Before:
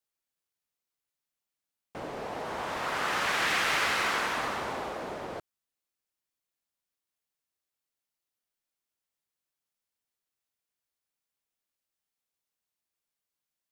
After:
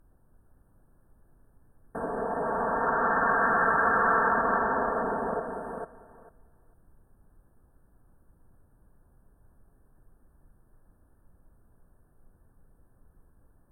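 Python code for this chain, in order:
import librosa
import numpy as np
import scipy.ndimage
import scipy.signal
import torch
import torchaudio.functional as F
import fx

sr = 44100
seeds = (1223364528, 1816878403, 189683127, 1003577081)

y = x + 0.8 * np.pad(x, (int(4.4 * sr / 1000.0), 0))[:len(x)]
y = fx.dmg_noise_colour(y, sr, seeds[0], colour='brown', level_db=-63.0)
y = fx.echo_feedback(y, sr, ms=446, feedback_pct=15, wet_db=-4.5)
y = fx.env_lowpass_down(y, sr, base_hz=2300.0, full_db=-25.0)
y = fx.brickwall_bandstop(y, sr, low_hz=1800.0, high_hz=8300.0)
y = y * 10.0 ** (4.0 / 20.0)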